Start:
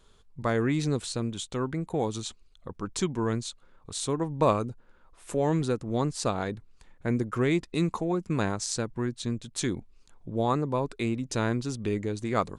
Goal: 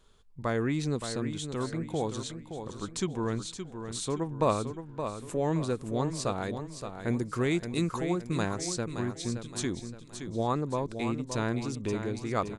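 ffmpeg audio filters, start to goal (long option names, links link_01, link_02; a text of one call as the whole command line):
ffmpeg -i in.wav -filter_complex "[0:a]asettb=1/sr,asplit=3[link_01][link_02][link_03];[link_01]atrim=end=6.434[link_04];[link_02]atrim=start=6.43:end=8.47,asetpts=PTS-STARTPTS,afade=type=in:duration=0.004:curve=qsin,afade=type=out:start_time=2.036:duration=0.004:curve=qsin,highshelf=frequency=5300:gain=8.5[link_05];[link_03]atrim=start=8.466[link_06];[link_04][link_05]acrossfade=duration=0.004:curve1=hsin:curve2=qsin[link_07];[link_07][link_06]acrossfade=duration=0.004:curve1=qsin:curve2=hsin,aecho=1:1:570|1140|1710|2280:0.376|0.15|0.0601|0.0241,volume=-3dB" out.wav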